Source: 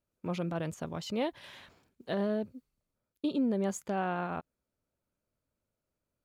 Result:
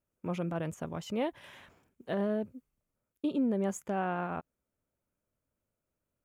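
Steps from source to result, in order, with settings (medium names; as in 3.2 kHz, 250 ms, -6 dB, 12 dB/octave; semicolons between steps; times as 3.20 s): peaking EQ 4.3 kHz -11 dB 0.58 oct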